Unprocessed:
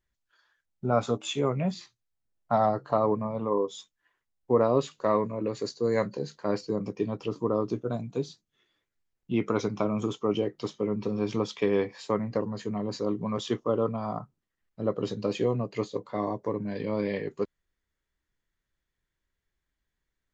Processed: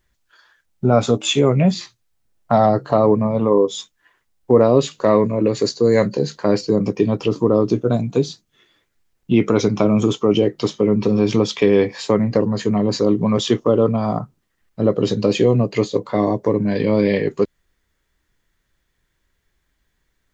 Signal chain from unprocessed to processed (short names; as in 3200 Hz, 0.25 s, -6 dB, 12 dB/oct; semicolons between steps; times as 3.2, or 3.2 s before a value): dynamic EQ 1100 Hz, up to -7 dB, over -41 dBFS, Q 1.1; in parallel at +2 dB: limiter -20.5 dBFS, peak gain reduction 7.5 dB; on the sum: gain +7 dB